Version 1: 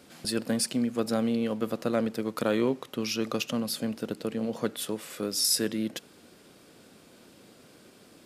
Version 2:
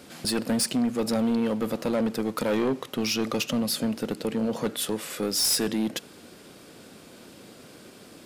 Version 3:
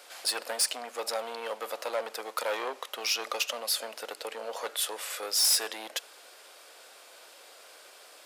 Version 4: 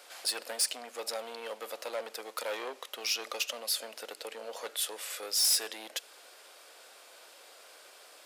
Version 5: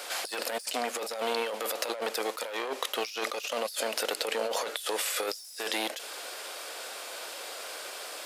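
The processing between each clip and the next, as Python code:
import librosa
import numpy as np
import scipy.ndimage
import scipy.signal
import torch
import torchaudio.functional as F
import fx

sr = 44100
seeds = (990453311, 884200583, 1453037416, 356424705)

y1 = 10.0 ** (-26.0 / 20.0) * np.tanh(x / 10.0 ** (-26.0 / 20.0))
y1 = y1 * 10.0 ** (6.5 / 20.0)
y2 = scipy.signal.sosfilt(scipy.signal.butter(4, 580.0, 'highpass', fs=sr, output='sos'), y1)
y3 = fx.dynamic_eq(y2, sr, hz=1000.0, q=0.8, threshold_db=-46.0, ratio=4.0, max_db=-5)
y3 = y3 * 10.0 ** (-2.0 / 20.0)
y4 = fx.over_compress(y3, sr, threshold_db=-43.0, ratio=-1.0)
y4 = y4 * 10.0 ** (8.5 / 20.0)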